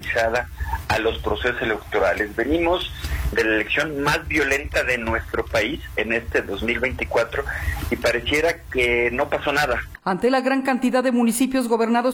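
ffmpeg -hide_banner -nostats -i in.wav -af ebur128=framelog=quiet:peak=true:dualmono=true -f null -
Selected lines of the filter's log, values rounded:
Integrated loudness:
  I:         -18.5 LUFS
  Threshold: -28.5 LUFS
Loudness range:
  LRA:         2.3 LU
  Threshold: -38.6 LUFS
  LRA low:   -19.7 LUFS
  LRA high:  -17.4 LUFS
True peak:
  Peak:       -7.1 dBFS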